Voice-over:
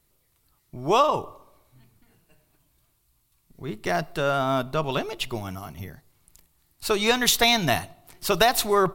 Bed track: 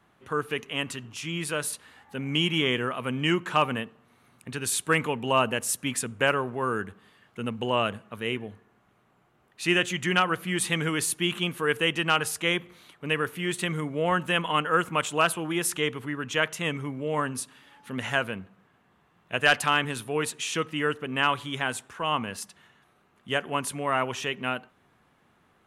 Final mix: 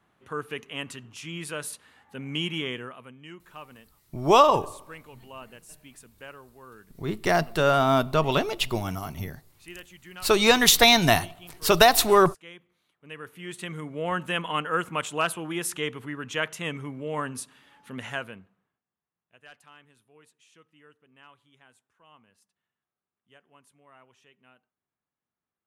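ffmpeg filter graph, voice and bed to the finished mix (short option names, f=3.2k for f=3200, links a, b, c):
-filter_complex "[0:a]adelay=3400,volume=3dB[a];[1:a]volume=13dB,afade=t=out:st=2.49:d=0.66:silence=0.158489,afade=t=in:st=12.96:d=1.25:silence=0.133352,afade=t=out:st=17.79:d=1.03:silence=0.0473151[b];[a][b]amix=inputs=2:normalize=0"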